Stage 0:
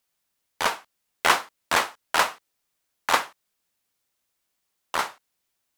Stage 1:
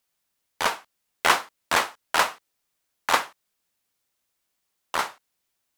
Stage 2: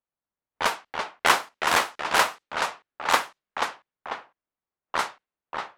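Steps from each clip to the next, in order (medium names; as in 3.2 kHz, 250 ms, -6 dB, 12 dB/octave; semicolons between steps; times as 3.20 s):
no audible change
spectral noise reduction 8 dB; ever faster or slower copies 296 ms, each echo -1 st, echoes 2, each echo -6 dB; level-controlled noise filter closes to 1.3 kHz, open at -20 dBFS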